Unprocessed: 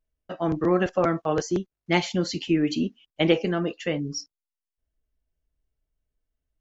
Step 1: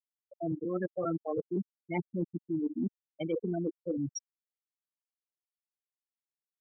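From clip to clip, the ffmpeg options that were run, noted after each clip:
ffmpeg -i in.wav -af "afftfilt=real='re*gte(hypot(re,im),0.251)':imag='im*gte(hypot(re,im),0.251)':win_size=1024:overlap=0.75,areverse,acompressor=threshold=-29dB:ratio=16,areverse" out.wav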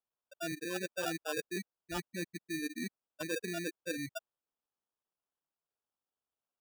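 ffmpeg -i in.wav -af "acrusher=samples=21:mix=1:aa=0.000001,lowshelf=frequency=410:gain=-10.5" out.wav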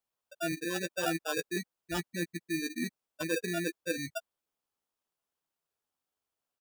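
ffmpeg -i in.wav -filter_complex "[0:a]asplit=2[link_01][link_02];[link_02]adelay=12,volume=-8.5dB[link_03];[link_01][link_03]amix=inputs=2:normalize=0,volume=3.5dB" out.wav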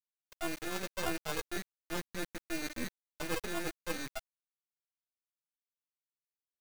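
ffmpeg -i in.wav -af "acrusher=bits=4:dc=4:mix=0:aa=0.000001" out.wav

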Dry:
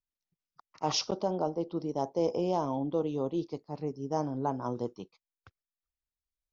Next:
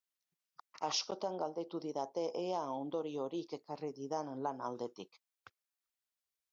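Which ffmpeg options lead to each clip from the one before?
ffmpeg -i in.wav -af "highpass=frequency=700:poles=1,acompressor=threshold=-41dB:ratio=2,volume=3dB" out.wav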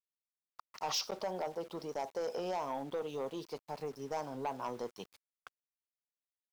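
ffmpeg -i in.wav -af "asoftclip=type=tanh:threshold=-32.5dB,equalizer=frequency=310:width=3.3:gain=-8,aeval=exprs='val(0)*gte(abs(val(0)),0.00133)':channel_layout=same,volume=4dB" out.wav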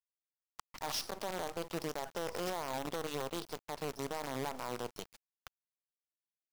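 ffmpeg -i in.wav -filter_complex "[0:a]asplit=2[link_01][link_02];[link_02]acompressor=threshold=-45dB:ratio=5,volume=-2dB[link_03];[link_01][link_03]amix=inputs=2:normalize=0,alimiter=level_in=10dB:limit=-24dB:level=0:latency=1:release=34,volume=-10dB,acrusher=bits=7:dc=4:mix=0:aa=0.000001,volume=1.5dB" out.wav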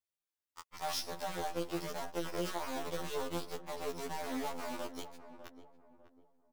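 ffmpeg -i in.wav -filter_complex "[0:a]flanger=delay=0.1:depth=3.6:regen=-48:speed=0.94:shape=triangular,asplit=2[link_01][link_02];[link_02]adelay=600,lowpass=frequency=990:poles=1,volume=-11dB,asplit=2[link_03][link_04];[link_04]adelay=600,lowpass=frequency=990:poles=1,volume=0.38,asplit=2[link_05][link_06];[link_06]adelay=600,lowpass=frequency=990:poles=1,volume=0.38,asplit=2[link_07][link_08];[link_08]adelay=600,lowpass=frequency=990:poles=1,volume=0.38[link_09];[link_01][link_03][link_05][link_07][link_09]amix=inputs=5:normalize=0,afftfilt=real='re*2*eq(mod(b,4),0)':imag='im*2*eq(mod(b,4),0)':win_size=2048:overlap=0.75,volume=6dB" out.wav

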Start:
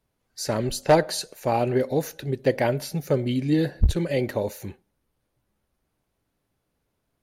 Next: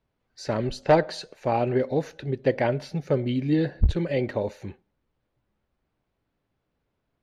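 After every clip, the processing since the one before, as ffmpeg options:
ffmpeg -i in.wav -af "lowpass=3700,volume=-1dB" out.wav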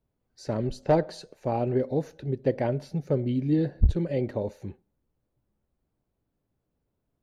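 ffmpeg -i in.wav -af "equalizer=frequency=2300:width=0.39:gain=-10.5" out.wav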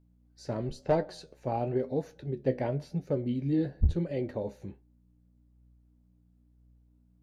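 ffmpeg -i in.wav -af "aeval=exprs='val(0)+0.00141*(sin(2*PI*60*n/s)+sin(2*PI*2*60*n/s)/2+sin(2*PI*3*60*n/s)/3+sin(2*PI*4*60*n/s)/4+sin(2*PI*5*60*n/s)/5)':channel_layout=same,flanger=delay=9.9:depth=6.3:regen=55:speed=0.97:shape=triangular" out.wav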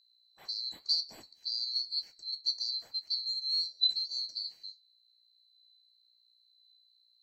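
ffmpeg -i in.wav -af "afftfilt=real='real(if(lt(b,736),b+184*(1-2*mod(floor(b/184),2)),b),0)':imag='imag(if(lt(b,736),b+184*(1-2*mod(floor(b/184),2)),b),0)':win_size=2048:overlap=0.75,volume=-4.5dB" out.wav

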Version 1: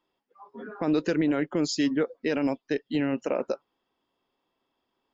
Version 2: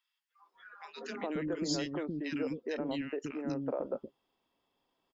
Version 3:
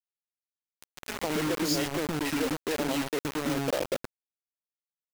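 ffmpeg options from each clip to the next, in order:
ffmpeg -i in.wav -filter_complex "[0:a]acompressor=threshold=-32dB:ratio=2.5,acrossover=split=320|1400[link_01][link_02][link_03];[link_02]adelay=420[link_04];[link_01]adelay=540[link_05];[link_05][link_04][link_03]amix=inputs=3:normalize=0" out.wav
ffmpeg -i in.wav -af "acrusher=bits=5:mix=0:aa=0.000001,volume=5dB" out.wav

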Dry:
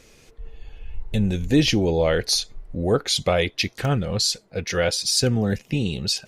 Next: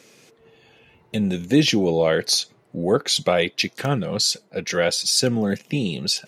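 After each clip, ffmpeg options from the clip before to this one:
ffmpeg -i in.wav -af "highpass=frequency=140:width=0.5412,highpass=frequency=140:width=1.3066,volume=1.5dB" out.wav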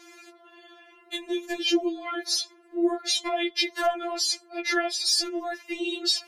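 ffmpeg -i in.wav -af "equalizer=frequency=900:width=0.39:gain=9,acompressor=threshold=-18dB:ratio=16,afftfilt=real='re*4*eq(mod(b,16),0)':imag='im*4*eq(mod(b,16),0)':win_size=2048:overlap=0.75" out.wav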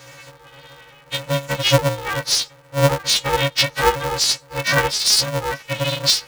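ffmpeg -i in.wav -af "aeval=exprs='val(0)*sgn(sin(2*PI*210*n/s))':channel_layout=same,volume=8dB" out.wav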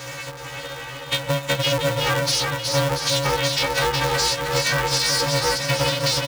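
ffmpeg -i in.wav -af "alimiter=limit=-12.5dB:level=0:latency=1:release=17,acompressor=threshold=-29dB:ratio=6,aecho=1:1:370|684.5|951.8|1179|1372:0.631|0.398|0.251|0.158|0.1,volume=8.5dB" out.wav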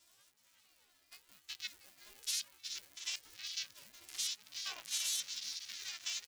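ffmpeg -i in.wav -af "aderivative,afwtdn=0.0282,aeval=exprs='val(0)*sin(2*PI*930*n/s+930*0.35/0.99*sin(2*PI*0.99*n/s))':channel_layout=same,volume=-8dB" out.wav

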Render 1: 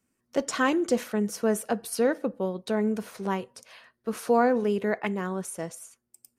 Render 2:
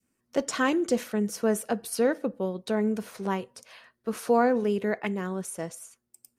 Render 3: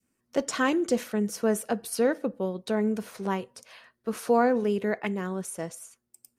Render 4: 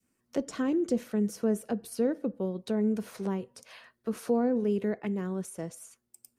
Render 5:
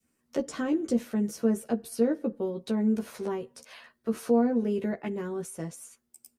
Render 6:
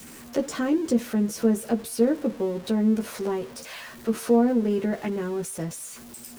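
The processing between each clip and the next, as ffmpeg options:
ffmpeg -i in.wav -af "adynamicequalizer=threshold=0.01:dfrequency=1000:dqfactor=0.94:tfrequency=1000:tqfactor=0.94:attack=5:release=100:ratio=0.375:range=2:mode=cutabove:tftype=bell" out.wav
ffmpeg -i in.wav -af anull out.wav
ffmpeg -i in.wav -filter_complex "[0:a]acrossover=split=470[link_01][link_02];[link_02]acompressor=threshold=-44dB:ratio=3[link_03];[link_01][link_03]amix=inputs=2:normalize=0" out.wav
ffmpeg -i in.wav -filter_complex "[0:a]asplit=2[link_01][link_02];[link_02]adelay=13,volume=-3dB[link_03];[link_01][link_03]amix=inputs=2:normalize=0" out.wav
ffmpeg -i in.wav -af "aeval=exprs='val(0)+0.5*0.00841*sgn(val(0))':channel_layout=same,volume=3.5dB" out.wav

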